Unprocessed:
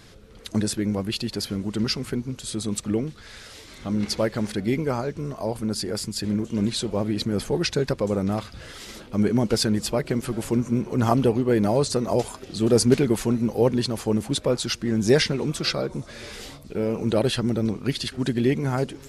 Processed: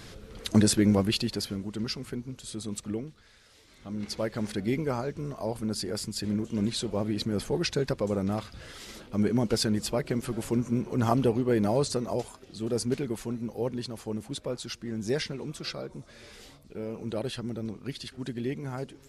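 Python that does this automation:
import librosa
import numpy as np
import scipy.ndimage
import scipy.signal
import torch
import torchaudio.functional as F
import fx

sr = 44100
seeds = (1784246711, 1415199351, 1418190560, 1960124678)

y = fx.gain(x, sr, db=fx.line((0.97, 3.0), (1.71, -8.0), (2.9, -8.0), (3.39, -16.5), (4.5, -4.5), (11.86, -4.5), (12.4, -11.0)))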